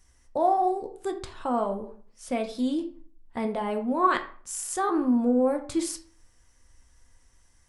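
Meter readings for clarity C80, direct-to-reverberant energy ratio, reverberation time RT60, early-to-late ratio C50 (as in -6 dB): 16.0 dB, 4.5 dB, 0.45 s, 12.0 dB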